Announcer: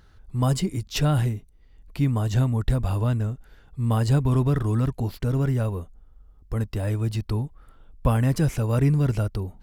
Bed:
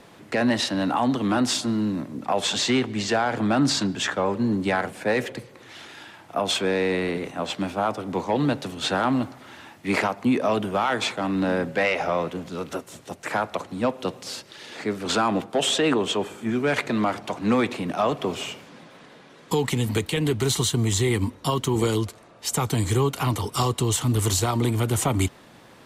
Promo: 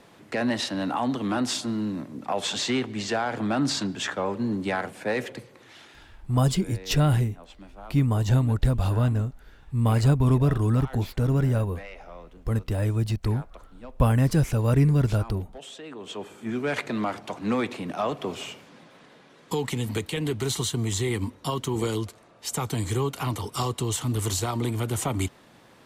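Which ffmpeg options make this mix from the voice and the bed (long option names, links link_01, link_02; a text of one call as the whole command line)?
ffmpeg -i stem1.wav -i stem2.wav -filter_complex "[0:a]adelay=5950,volume=0.5dB[link_01];[1:a]volume=11.5dB,afade=type=out:start_time=5.51:duration=0.9:silence=0.158489,afade=type=in:start_time=15.93:duration=0.6:silence=0.16788[link_02];[link_01][link_02]amix=inputs=2:normalize=0" out.wav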